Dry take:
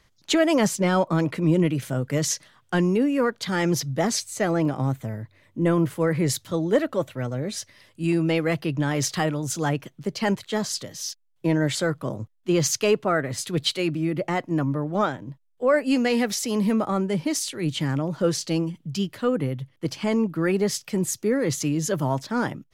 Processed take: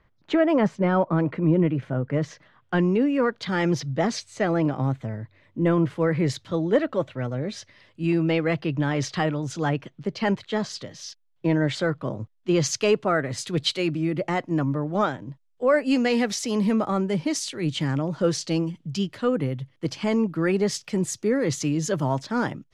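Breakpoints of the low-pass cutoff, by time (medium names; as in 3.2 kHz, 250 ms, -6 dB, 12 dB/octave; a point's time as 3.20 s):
2.32 s 1.8 kHz
3.05 s 4.1 kHz
12.08 s 4.1 kHz
12.99 s 7.4 kHz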